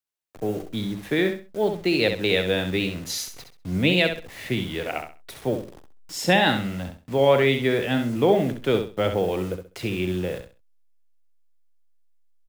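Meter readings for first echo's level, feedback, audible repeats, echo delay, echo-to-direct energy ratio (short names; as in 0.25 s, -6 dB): -7.5 dB, 25%, 3, 66 ms, -7.0 dB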